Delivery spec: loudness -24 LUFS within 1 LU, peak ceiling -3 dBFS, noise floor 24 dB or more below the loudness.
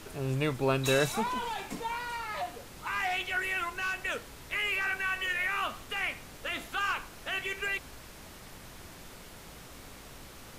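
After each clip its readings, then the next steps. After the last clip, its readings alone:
noise floor -49 dBFS; noise floor target -56 dBFS; loudness -32.0 LUFS; peak level -14.5 dBFS; loudness target -24.0 LUFS
-> noise print and reduce 7 dB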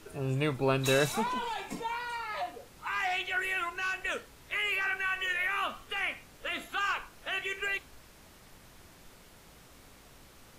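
noise floor -56 dBFS; loudness -32.0 LUFS; peak level -14.5 dBFS; loudness target -24.0 LUFS
-> trim +8 dB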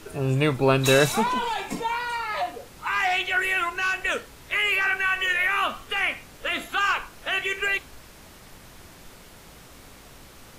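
loudness -24.0 LUFS; peak level -6.5 dBFS; noise floor -48 dBFS

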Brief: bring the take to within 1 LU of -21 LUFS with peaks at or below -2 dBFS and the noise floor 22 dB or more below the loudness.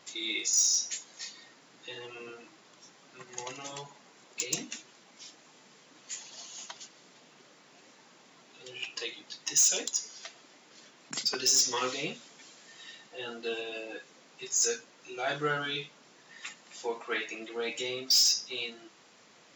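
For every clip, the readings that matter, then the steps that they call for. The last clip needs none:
clipped samples 0.1%; clipping level -19.5 dBFS; loudness -29.5 LUFS; peak level -19.5 dBFS; loudness target -21.0 LUFS
-> clip repair -19.5 dBFS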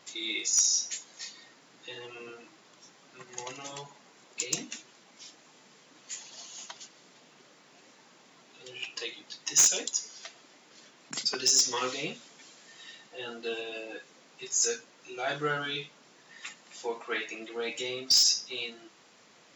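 clipped samples 0.0%; loudness -28.5 LUFS; peak level -10.5 dBFS; loudness target -21.0 LUFS
-> trim +7.5 dB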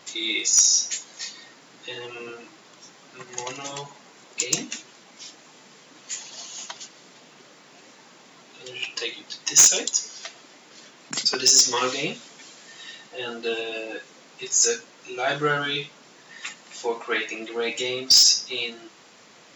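loudness -21.0 LUFS; peak level -3.0 dBFS; noise floor -52 dBFS

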